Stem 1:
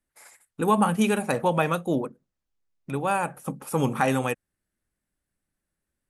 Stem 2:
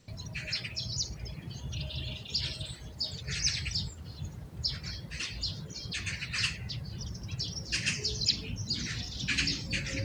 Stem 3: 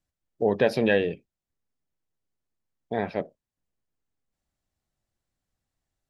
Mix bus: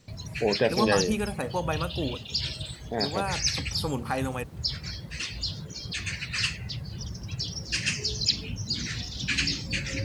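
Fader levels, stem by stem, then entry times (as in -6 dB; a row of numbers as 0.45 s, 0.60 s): -6.5 dB, +3.0 dB, -2.5 dB; 0.10 s, 0.00 s, 0.00 s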